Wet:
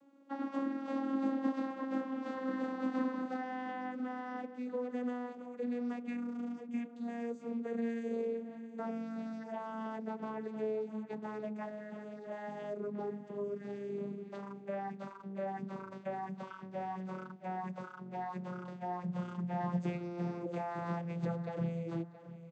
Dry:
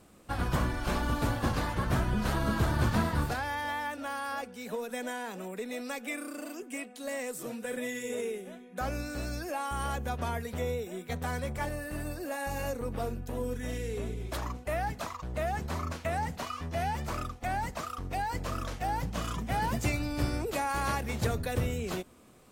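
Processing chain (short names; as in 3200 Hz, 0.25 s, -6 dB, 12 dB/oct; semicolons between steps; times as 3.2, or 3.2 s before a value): vocoder on a gliding note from C#4, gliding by -9 st; high shelf 3300 Hz -8.5 dB; feedback echo 0.673 s, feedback 31%, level -15 dB; gain -3.5 dB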